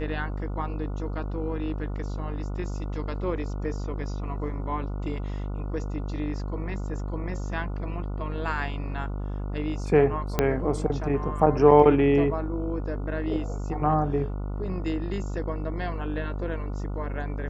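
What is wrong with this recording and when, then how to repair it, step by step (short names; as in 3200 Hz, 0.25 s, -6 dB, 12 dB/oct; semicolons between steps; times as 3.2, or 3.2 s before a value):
buzz 50 Hz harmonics 29 -31 dBFS
10.39 pop -8 dBFS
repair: de-click; de-hum 50 Hz, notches 29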